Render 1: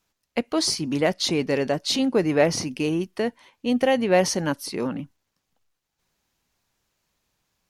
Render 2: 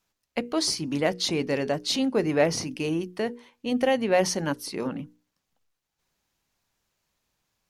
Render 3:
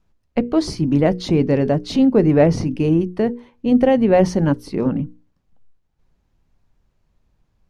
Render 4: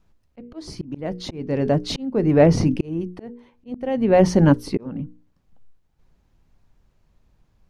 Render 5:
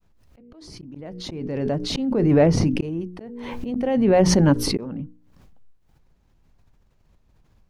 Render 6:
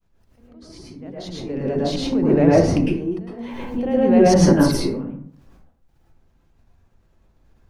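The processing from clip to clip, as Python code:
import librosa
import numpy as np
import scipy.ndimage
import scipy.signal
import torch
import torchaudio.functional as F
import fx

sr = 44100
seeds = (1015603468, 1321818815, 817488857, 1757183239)

y1 = fx.hum_notches(x, sr, base_hz=60, count=8)
y1 = y1 * 10.0 ** (-2.5 / 20.0)
y2 = fx.tilt_eq(y1, sr, slope=-4.0)
y2 = y2 * 10.0 ** (4.0 / 20.0)
y3 = fx.auto_swell(y2, sr, attack_ms=668.0)
y3 = y3 * 10.0 ** (3.0 / 20.0)
y4 = fx.fade_in_head(y3, sr, length_s=2.55)
y4 = fx.pre_swell(y4, sr, db_per_s=27.0)
y4 = y4 * 10.0 ** (-2.5 / 20.0)
y5 = fx.rev_plate(y4, sr, seeds[0], rt60_s=0.56, hf_ratio=0.45, predelay_ms=95, drr_db=-6.0)
y5 = y5 * 10.0 ** (-4.5 / 20.0)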